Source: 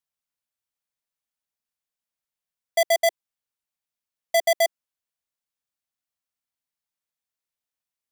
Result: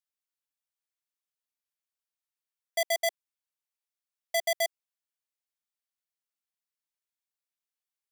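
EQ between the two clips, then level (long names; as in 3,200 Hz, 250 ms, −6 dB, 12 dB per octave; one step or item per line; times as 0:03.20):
high-pass filter 940 Hz 6 dB per octave
−4.5 dB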